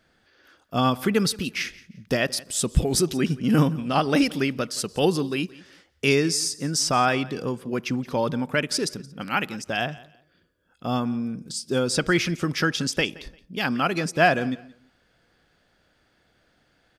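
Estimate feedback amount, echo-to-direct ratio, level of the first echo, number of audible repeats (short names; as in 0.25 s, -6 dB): 24%, -21.0 dB, -21.0 dB, 2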